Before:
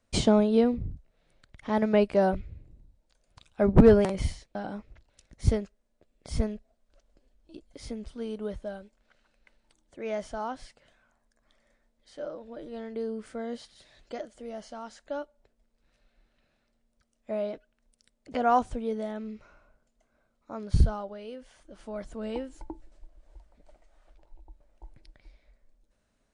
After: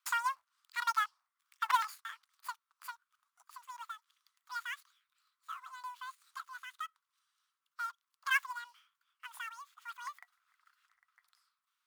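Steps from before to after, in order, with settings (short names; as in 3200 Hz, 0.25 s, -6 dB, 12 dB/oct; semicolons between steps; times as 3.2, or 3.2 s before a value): switching dead time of 0.095 ms; elliptic high-pass 480 Hz, stop band 60 dB; wide varispeed 2.22×; gain -5 dB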